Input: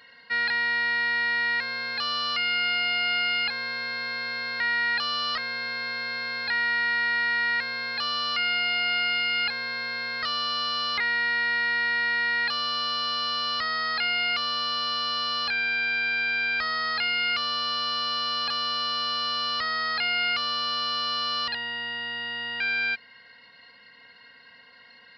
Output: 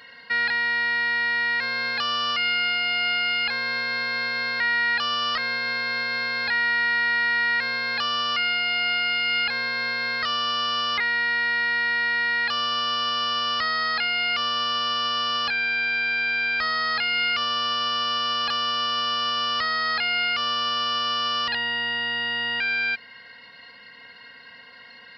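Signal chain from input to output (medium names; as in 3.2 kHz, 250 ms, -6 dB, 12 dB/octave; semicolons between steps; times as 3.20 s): band-stop 4.1 kHz, Q 19; peak limiter -23.5 dBFS, peak gain reduction 5 dB; trim +6 dB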